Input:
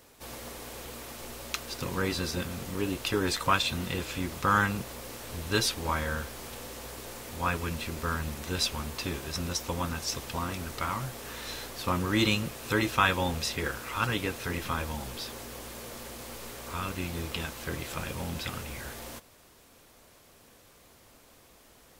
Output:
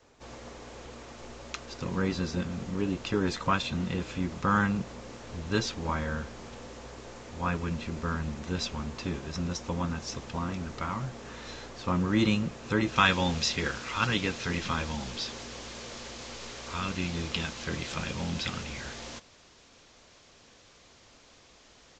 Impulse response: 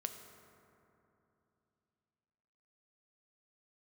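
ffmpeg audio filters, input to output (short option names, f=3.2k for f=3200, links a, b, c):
-af "asetnsamples=n=441:p=0,asendcmd='12.96 equalizer g 5.5',equalizer=f=4.4k:t=o:w=2.4:g=-5,aresample=16000,aresample=44100,adynamicequalizer=threshold=0.00447:dfrequency=190:dqfactor=1.8:tfrequency=190:tqfactor=1.8:attack=5:release=100:ratio=0.375:range=3.5:mode=boostabove:tftype=bell,volume=-1dB"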